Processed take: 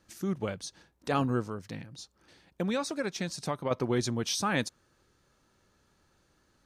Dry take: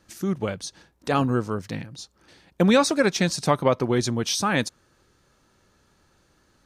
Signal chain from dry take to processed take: 1.42–3.71 s: compression 1.5:1, threshold -34 dBFS, peak gain reduction 7.5 dB; trim -6 dB

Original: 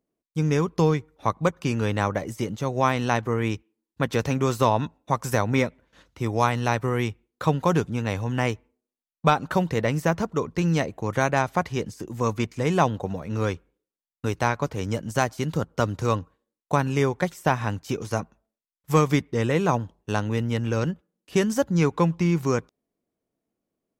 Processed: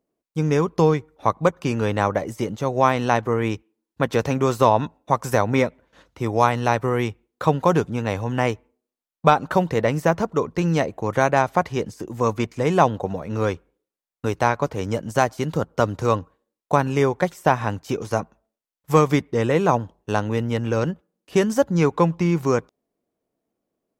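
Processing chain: peaking EQ 650 Hz +5.5 dB 2.3 oct

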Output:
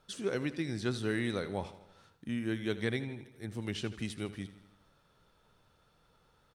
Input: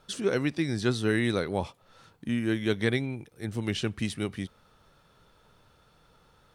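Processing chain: feedback delay 80 ms, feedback 59%, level -15 dB; trim -7 dB

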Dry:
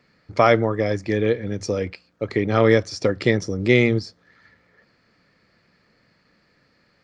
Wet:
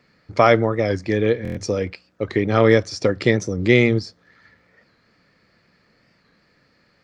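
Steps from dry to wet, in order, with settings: buffer glitch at 1.43 s, samples 1024, times 5; warped record 45 rpm, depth 100 cents; trim +1.5 dB

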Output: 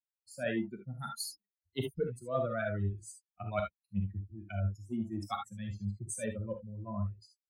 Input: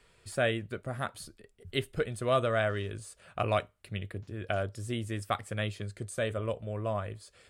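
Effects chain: expander on every frequency bin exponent 3; peaking EQ 210 Hz +14.5 dB 1.4 oct; reverse; compression 5:1, threshold -40 dBFS, peak gain reduction 16 dB; reverse; gated-style reverb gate 90 ms rising, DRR 3.5 dB; three bands expanded up and down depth 70%; trim +6 dB

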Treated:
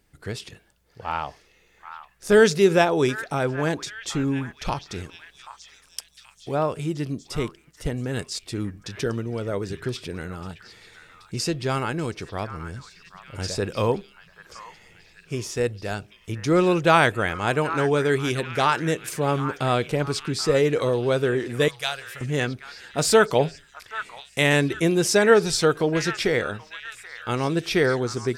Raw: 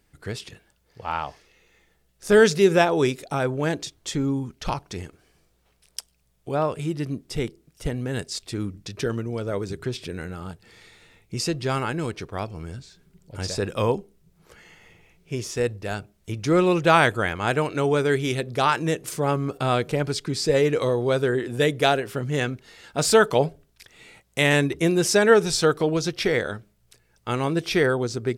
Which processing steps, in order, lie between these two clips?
21.68–22.21 s: amplifier tone stack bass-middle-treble 10-0-10; repeats whose band climbs or falls 781 ms, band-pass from 1.4 kHz, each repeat 0.7 oct, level -9 dB

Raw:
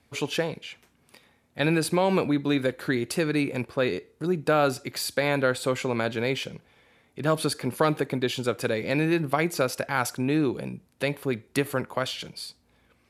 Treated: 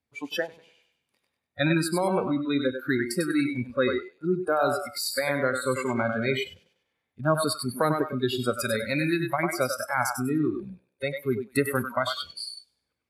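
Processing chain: 8.51–9.30 s: treble shelf 2.6 kHz +6 dB; on a send: thinning echo 98 ms, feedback 44%, high-pass 280 Hz, level -3.5 dB; on the sum: spectral noise reduction 24 dB; gain riding within 3 dB 0.5 s

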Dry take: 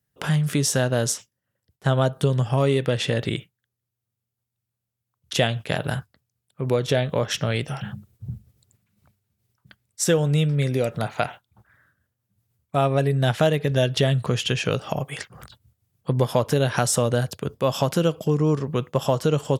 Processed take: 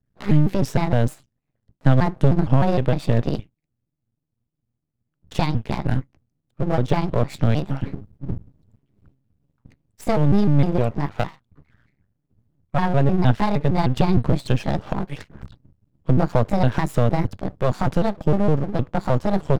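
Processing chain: pitch shift switched off and on +5 st, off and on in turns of 154 ms; RIAA curve playback; half-wave rectifier

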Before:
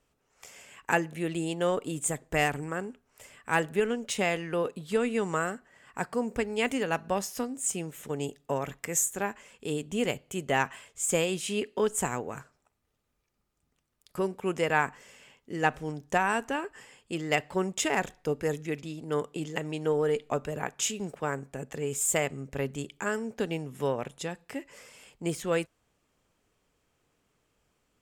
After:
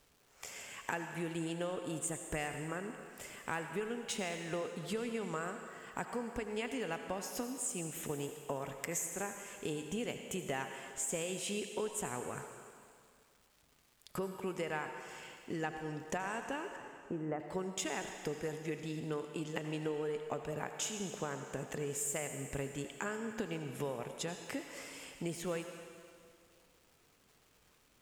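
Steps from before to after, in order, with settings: crackle 550 per s -59 dBFS; 16.76–17.40 s: low-pass 1.4 kHz 24 dB/octave; compression 5:1, threshold -39 dBFS, peak gain reduction 17.5 dB; on a send: high-pass 310 Hz 6 dB/octave + reverberation RT60 2.2 s, pre-delay 68 ms, DRR 6 dB; on the sum: trim +2 dB

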